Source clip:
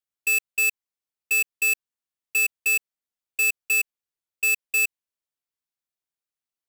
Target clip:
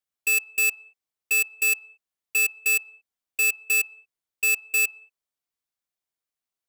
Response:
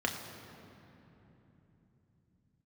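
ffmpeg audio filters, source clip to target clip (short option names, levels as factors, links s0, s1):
-filter_complex "[0:a]asplit=2[s0][s1];[s1]asplit=3[s2][s3][s4];[s2]bandpass=f=730:t=q:w=8,volume=1[s5];[s3]bandpass=f=1090:t=q:w=8,volume=0.501[s6];[s4]bandpass=f=2440:t=q:w=8,volume=0.355[s7];[s5][s6][s7]amix=inputs=3:normalize=0[s8];[1:a]atrim=start_sample=2205,afade=t=out:st=0.24:d=0.01,atrim=end_sample=11025,asetrate=36162,aresample=44100[s9];[s8][s9]afir=irnorm=-1:irlink=0,volume=0.266[s10];[s0][s10]amix=inputs=2:normalize=0,volume=1.12"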